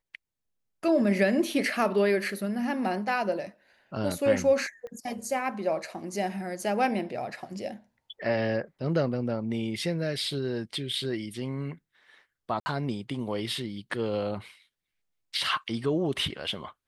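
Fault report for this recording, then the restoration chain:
0:04.87: click −31 dBFS
0:12.60–0:12.66: drop-out 60 ms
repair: click removal
repair the gap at 0:12.60, 60 ms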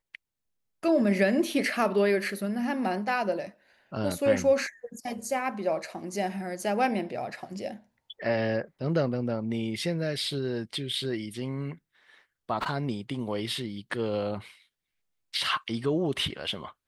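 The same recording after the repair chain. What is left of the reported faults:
0:04.87: click

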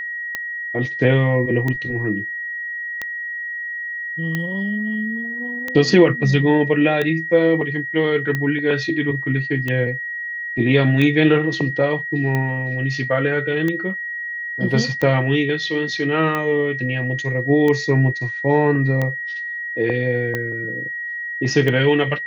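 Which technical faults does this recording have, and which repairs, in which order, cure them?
scratch tick 45 rpm −10 dBFS
whistle 1,900 Hz −25 dBFS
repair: click removal
notch filter 1,900 Hz, Q 30

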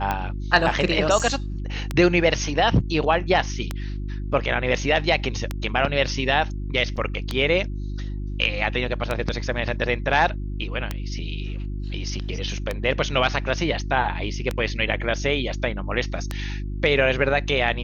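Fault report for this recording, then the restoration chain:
mains hum 50 Hz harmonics 7 −29 dBFS
scratch tick 33 1/3 rpm −10 dBFS
0:01.19–0:01.20: drop-out 6.4 ms
0:06.96–0:06.97: drop-out 7.1 ms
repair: click removal
hum removal 50 Hz, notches 7
repair the gap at 0:01.19, 6.4 ms
repair the gap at 0:06.96, 7.1 ms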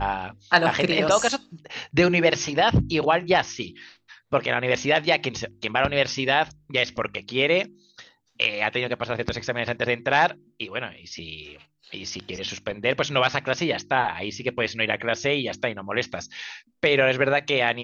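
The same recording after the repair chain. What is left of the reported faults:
none of them is left

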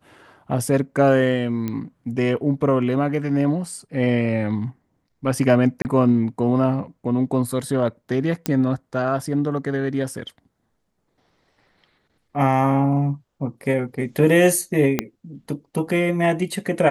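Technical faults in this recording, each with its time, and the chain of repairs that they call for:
0:01.68: click −14 dBFS
0:05.82–0:05.85: drop-out 29 ms
0:08.46: click −6 dBFS
0:14.99: click −5 dBFS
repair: click removal
repair the gap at 0:05.82, 29 ms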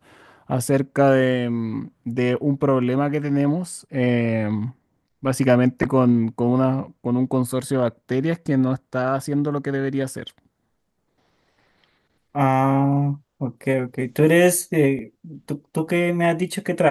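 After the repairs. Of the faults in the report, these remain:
0:14.99: click

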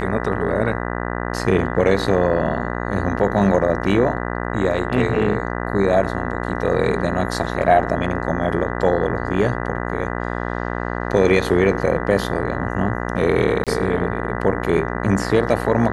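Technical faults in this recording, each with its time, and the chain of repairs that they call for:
mains buzz 60 Hz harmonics 33 −25 dBFS
0:13.64–0:13.67: drop-out 27 ms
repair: hum removal 60 Hz, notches 33
repair the gap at 0:13.64, 27 ms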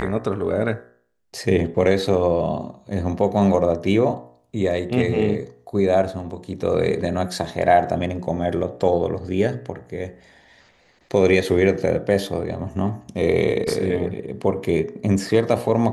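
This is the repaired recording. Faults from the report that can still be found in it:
none of them is left

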